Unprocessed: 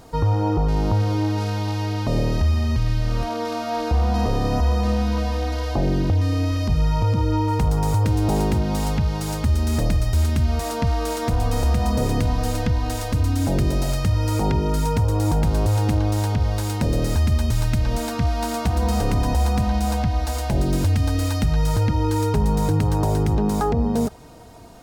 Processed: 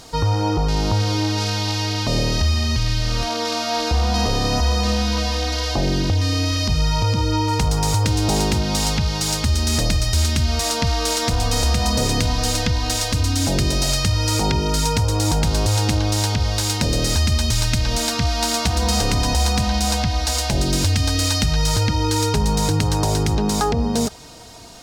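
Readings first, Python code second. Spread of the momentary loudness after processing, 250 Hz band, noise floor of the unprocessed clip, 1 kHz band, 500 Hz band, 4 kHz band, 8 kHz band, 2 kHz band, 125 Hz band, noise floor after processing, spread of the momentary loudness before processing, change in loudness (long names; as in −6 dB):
2 LU, 0.0 dB, −27 dBFS, +2.5 dB, +1.0 dB, +13.0 dB, +12.0 dB, +7.0 dB, 0.0 dB, −24 dBFS, 4 LU, +2.0 dB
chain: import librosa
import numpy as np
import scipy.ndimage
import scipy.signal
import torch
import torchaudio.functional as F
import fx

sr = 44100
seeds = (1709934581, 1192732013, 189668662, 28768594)

y = fx.peak_eq(x, sr, hz=5100.0, db=14.5, octaves=2.5)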